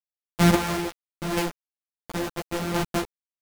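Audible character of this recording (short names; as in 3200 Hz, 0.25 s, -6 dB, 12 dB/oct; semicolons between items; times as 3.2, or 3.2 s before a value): a buzz of ramps at a fixed pitch in blocks of 256 samples; chopped level 0.73 Hz, depth 60%, duty 40%; a quantiser's noise floor 6-bit, dither none; a shimmering, thickened sound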